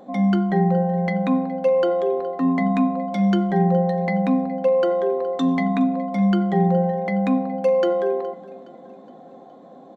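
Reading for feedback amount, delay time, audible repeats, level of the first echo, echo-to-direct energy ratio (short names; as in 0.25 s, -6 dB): 51%, 0.417 s, 3, -20.0 dB, -18.5 dB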